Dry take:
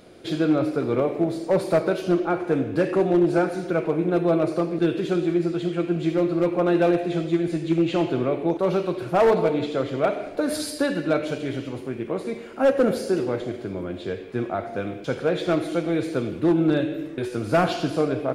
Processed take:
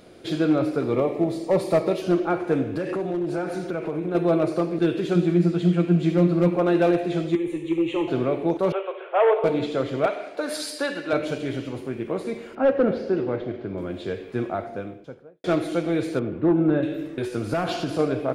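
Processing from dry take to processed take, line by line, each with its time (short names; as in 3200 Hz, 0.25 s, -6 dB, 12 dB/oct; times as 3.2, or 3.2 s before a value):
0.91–2.02 Butterworth band-stop 1500 Hz, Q 5.5
2.77–4.15 compressor, threshold -23 dBFS
5.15–6.56 bell 180 Hz +15 dB 0.2 oct
7.35–8.08 fixed phaser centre 1000 Hz, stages 8
8.72–9.44 Chebyshev band-pass 410–3300 Hz, order 5
10.06–11.13 weighting filter A
12.55–13.78 air absorption 270 m
14.38–15.44 studio fade out
16.19–16.83 LPF 1700 Hz
17.53–17.99 compressor, threshold -21 dBFS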